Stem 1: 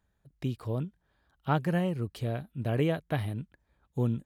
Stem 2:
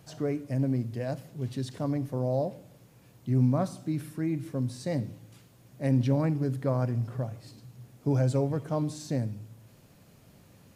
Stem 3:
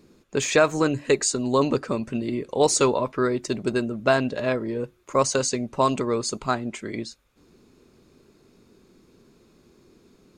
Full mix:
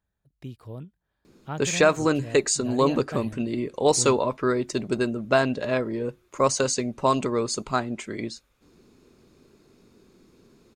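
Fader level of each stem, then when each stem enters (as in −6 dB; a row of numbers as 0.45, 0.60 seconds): −6.5 dB, muted, −0.5 dB; 0.00 s, muted, 1.25 s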